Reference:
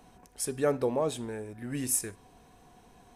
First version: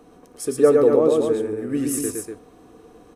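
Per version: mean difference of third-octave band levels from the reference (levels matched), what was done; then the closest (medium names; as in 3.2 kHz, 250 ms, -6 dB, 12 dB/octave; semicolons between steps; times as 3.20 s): 7.0 dB: small resonant body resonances 320/450/1200 Hz, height 15 dB, ringing for 40 ms; on a send: loudspeakers at several distances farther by 39 m -3 dB, 83 m -6 dB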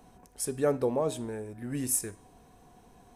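1.5 dB: peaking EQ 2.8 kHz -4.5 dB 2.4 oct; de-hum 313.5 Hz, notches 29; trim +1 dB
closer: second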